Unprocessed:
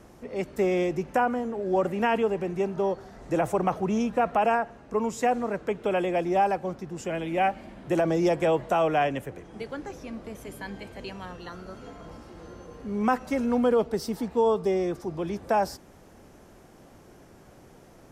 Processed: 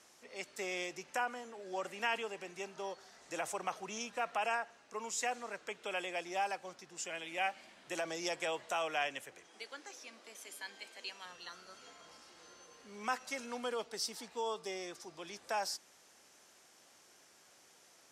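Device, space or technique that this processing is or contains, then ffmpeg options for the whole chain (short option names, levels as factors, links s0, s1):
piezo pickup straight into a mixer: -filter_complex "[0:a]asettb=1/sr,asplit=3[s0][s1][s2];[s0]atrim=end=9.484[s3];[s1]atrim=start=9.48:end=11.25,asetpts=PTS-STARTPTS,afade=t=in:d=0.004:c=qsin,afade=t=out:st=1.766:d=0.004:c=qsin,highpass=f=230:w=0.5412,highpass=f=230:w=1.3066[s4];[s2]atrim=start=11.246[s5];[s3][s4]acrossfade=d=0.004:c1=hsin:c2=qsin[s6];[s6][s5]acrossfade=d=0.004:c1=qsin:c2=hsin,lowpass=6600,aderivative,volume=2.11"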